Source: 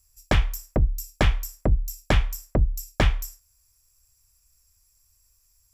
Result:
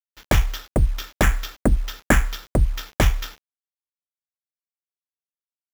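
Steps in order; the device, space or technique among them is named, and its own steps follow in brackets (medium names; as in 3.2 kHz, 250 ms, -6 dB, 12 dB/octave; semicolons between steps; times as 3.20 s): 1.23–2.43 s: fifteen-band graphic EQ 100 Hz -7 dB, 250 Hz +9 dB, 1.6 kHz +10 dB, 4 kHz -11 dB; early 8-bit sampler (sample-rate reducer 9 kHz, jitter 0%; bit crusher 8-bit); trim +2.5 dB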